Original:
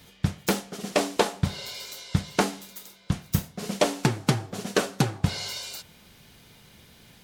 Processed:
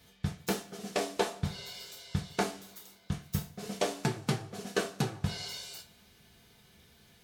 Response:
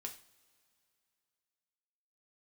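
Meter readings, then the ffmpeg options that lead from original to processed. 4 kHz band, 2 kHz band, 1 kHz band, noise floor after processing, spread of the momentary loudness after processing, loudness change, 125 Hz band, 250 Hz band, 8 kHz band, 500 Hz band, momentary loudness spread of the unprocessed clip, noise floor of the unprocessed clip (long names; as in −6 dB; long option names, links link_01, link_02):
−7.0 dB, −7.0 dB, −7.0 dB, −62 dBFS, 12 LU, −7.5 dB, −8.0 dB, −8.0 dB, −7.5 dB, −7.0 dB, 11 LU, −54 dBFS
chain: -filter_complex "[1:a]atrim=start_sample=2205,asetrate=70560,aresample=44100[link_01];[0:a][link_01]afir=irnorm=-1:irlink=0"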